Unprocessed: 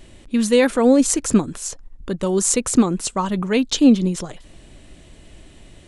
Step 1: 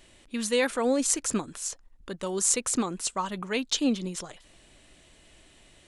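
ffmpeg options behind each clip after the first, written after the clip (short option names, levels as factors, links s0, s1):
-af "lowshelf=f=470:g=-11.5,volume=0.596"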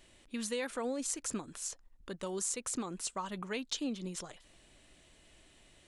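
-af "acompressor=threshold=0.0355:ratio=3,volume=0.531"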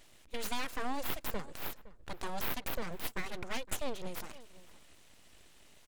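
-filter_complex "[0:a]aeval=exprs='abs(val(0))':c=same,asplit=2[s0][s1];[s1]adelay=513.1,volume=0.126,highshelf=f=4000:g=-11.5[s2];[s0][s2]amix=inputs=2:normalize=0,volume=1.41"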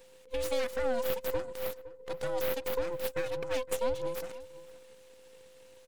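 -af "afftfilt=real='real(if(between(b,1,1008),(2*floor((b-1)/24)+1)*24-b,b),0)':imag='imag(if(between(b,1,1008),(2*floor((b-1)/24)+1)*24-b,b),0)*if(between(b,1,1008),-1,1)':win_size=2048:overlap=0.75"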